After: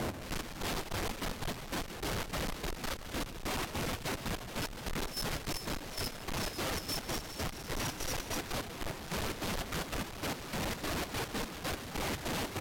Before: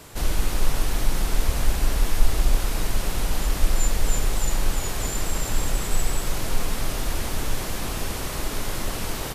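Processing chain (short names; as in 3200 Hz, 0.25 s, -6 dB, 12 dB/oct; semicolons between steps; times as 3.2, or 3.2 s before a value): HPF 220 Hz 6 dB/oct; reverb removal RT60 1.4 s; LPF 8300 Hz 24 dB/oct; low shelf 450 Hz +6.5 dB; Schmitt trigger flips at -45 dBFS; step gate "x..x..xx.xx.x." 200 bpm -12 dB; soft clip -33 dBFS, distortion -18 dB; echo 0.114 s -17 dB; speed mistake 45 rpm record played at 33 rpm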